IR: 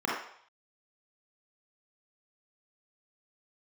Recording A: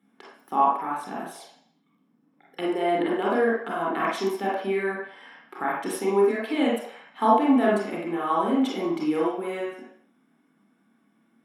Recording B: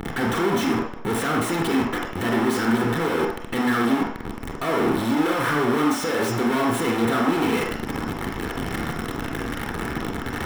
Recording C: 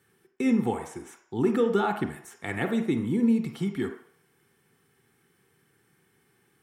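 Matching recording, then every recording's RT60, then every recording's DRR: A; 0.60, 0.60, 0.60 seconds; −5.5, 0.0, 5.5 decibels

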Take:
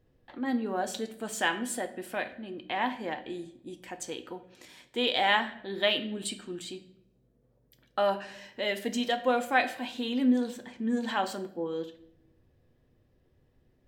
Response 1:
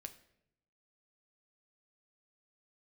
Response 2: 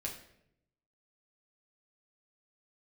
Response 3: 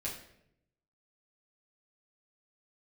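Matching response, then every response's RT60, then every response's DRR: 1; 0.80, 0.75, 0.75 seconds; 7.0, −2.0, −6.5 decibels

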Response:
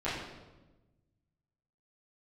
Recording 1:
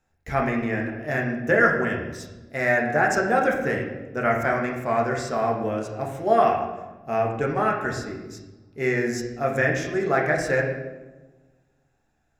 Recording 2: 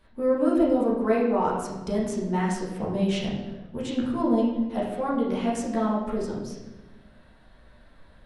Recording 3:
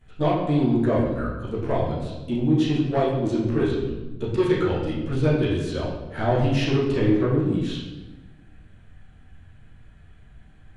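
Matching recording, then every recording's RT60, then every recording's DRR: 3; 1.2, 1.1, 1.1 seconds; −1.0, −7.5, −12.5 decibels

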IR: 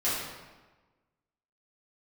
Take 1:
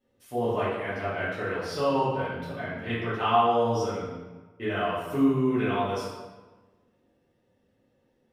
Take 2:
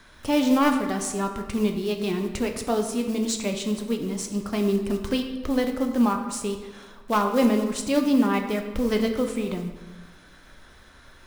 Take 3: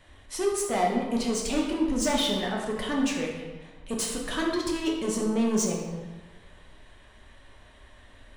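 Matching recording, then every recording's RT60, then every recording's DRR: 1; 1.2, 1.3, 1.3 seconds; −11.5, 4.0, −2.0 decibels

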